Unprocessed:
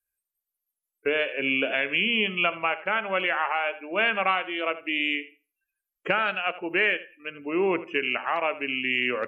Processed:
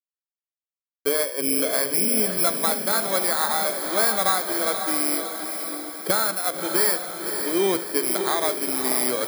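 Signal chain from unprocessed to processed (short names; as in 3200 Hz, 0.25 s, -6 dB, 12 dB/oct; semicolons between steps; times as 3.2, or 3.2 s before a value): FFT order left unsorted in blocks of 16 samples; sample gate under -47 dBFS; diffused feedback echo 0.567 s, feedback 54%, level -6.5 dB; gain +2.5 dB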